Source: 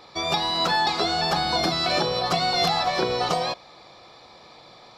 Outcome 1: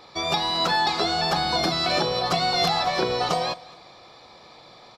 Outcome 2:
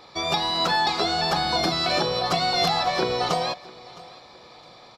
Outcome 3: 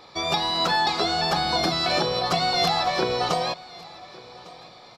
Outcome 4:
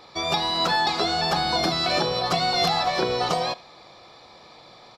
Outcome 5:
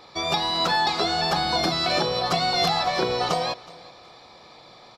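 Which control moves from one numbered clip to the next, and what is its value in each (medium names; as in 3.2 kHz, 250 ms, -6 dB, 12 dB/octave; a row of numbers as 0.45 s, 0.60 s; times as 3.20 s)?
feedback delay, time: 209 ms, 663 ms, 1153 ms, 73 ms, 371 ms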